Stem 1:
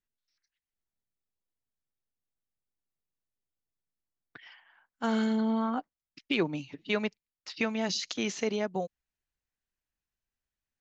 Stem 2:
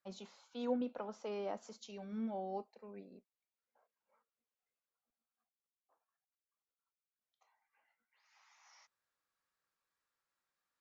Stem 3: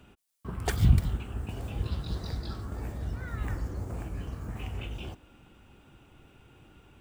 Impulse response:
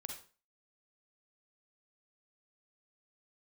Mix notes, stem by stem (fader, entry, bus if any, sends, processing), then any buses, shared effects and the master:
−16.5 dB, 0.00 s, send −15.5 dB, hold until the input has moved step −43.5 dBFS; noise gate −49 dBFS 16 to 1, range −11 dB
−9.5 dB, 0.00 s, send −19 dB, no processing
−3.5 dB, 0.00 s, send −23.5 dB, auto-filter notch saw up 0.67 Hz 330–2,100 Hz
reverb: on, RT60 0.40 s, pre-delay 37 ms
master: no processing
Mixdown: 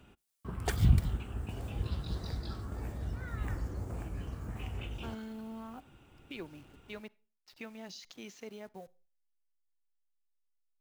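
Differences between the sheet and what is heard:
stem 2: muted
stem 3: missing auto-filter notch saw up 0.67 Hz 330–2,100 Hz

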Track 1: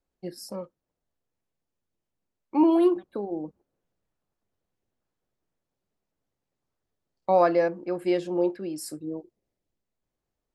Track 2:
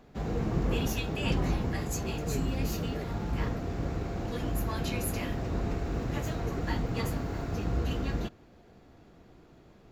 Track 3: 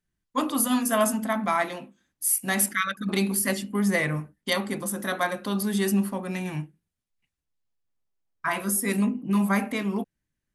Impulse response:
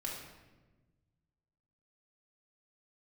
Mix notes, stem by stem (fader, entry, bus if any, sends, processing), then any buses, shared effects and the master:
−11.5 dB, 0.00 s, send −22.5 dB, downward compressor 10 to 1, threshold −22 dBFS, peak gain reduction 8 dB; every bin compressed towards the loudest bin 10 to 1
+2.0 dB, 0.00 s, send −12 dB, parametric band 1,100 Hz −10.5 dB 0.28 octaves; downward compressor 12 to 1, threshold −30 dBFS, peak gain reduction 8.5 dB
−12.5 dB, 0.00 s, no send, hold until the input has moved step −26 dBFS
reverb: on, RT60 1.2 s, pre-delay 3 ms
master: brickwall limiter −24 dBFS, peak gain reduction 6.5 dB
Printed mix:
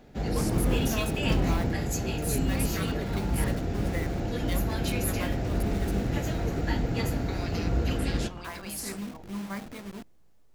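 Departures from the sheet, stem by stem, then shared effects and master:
stem 2: missing downward compressor 12 to 1, threshold −30 dBFS, peak gain reduction 8.5 dB
master: missing brickwall limiter −24 dBFS, peak gain reduction 6.5 dB

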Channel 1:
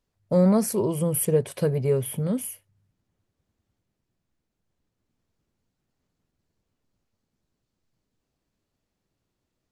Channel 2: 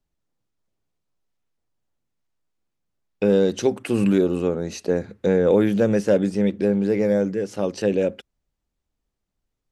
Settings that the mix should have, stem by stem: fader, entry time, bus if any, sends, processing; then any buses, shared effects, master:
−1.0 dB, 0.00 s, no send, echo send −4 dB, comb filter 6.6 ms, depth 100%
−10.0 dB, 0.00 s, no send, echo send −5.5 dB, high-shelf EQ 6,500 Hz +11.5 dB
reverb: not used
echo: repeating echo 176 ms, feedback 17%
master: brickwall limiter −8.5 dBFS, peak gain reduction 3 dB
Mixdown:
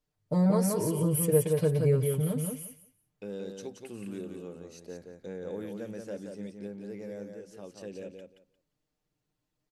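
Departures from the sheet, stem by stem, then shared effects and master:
stem 1 −1.0 dB → −8.0 dB
stem 2 −10.0 dB → −21.5 dB

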